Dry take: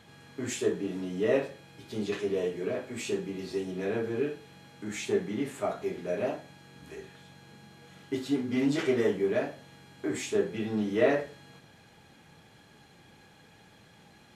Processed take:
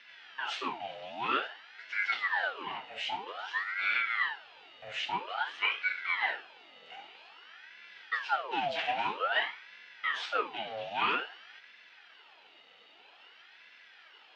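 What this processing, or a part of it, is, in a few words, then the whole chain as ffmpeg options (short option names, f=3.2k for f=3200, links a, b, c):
voice changer toy: -filter_complex "[0:a]aeval=exprs='val(0)*sin(2*PI*1100*n/s+1100*0.7/0.51*sin(2*PI*0.51*n/s))':c=same,highpass=580,equalizer=f=590:t=q:w=4:g=-7,equalizer=f=1.1k:t=q:w=4:g=-9,equalizer=f=2.9k:t=q:w=4:g=8,lowpass=f=4.3k:w=0.5412,lowpass=f=4.3k:w=1.3066,asettb=1/sr,asplit=3[a][b][c];[a]atrim=end=3.854[d];[b]atrim=start=3.85:end=4.97,asetpts=PTS-STARTPTS,afade=t=in:d=0.004:c=qsin,afade=t=out:st=1.116:d=0.004:c=qsin,lowshelf=f=140:t=q:w=1.5:g=9[e];[c]atrim=start=4.966[f];[d][e]acrossfade=d=0.004:c1=hsin:c2=qsin[g];[g][f]acrossfade=d=0.004:c1=qsin:c2=hsin,volume=3.5dB"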